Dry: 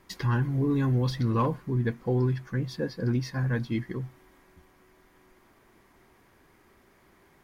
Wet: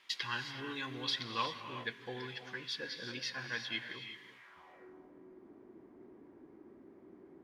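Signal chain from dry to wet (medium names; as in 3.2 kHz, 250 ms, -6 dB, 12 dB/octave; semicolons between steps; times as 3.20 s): band-pass sweep 3.2 kHz -> 310 Hz, 4.30–4.93 s; gated-style reverb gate 400 ms rising, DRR 6.5 dB; trim +9.5 dB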